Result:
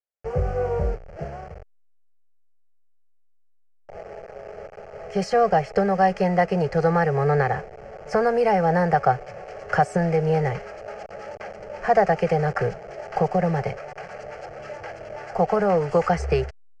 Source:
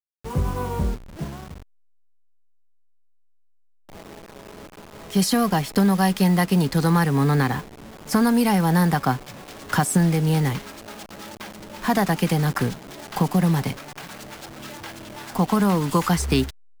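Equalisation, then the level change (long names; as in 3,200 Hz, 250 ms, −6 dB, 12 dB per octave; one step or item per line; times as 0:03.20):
low-pass filter 5,300 Hz 24 dB per octave
flat-topped bell 680 Hz +9 dB
phaser with its sweep stopped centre 1,000 Hz, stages 6
0.0 dB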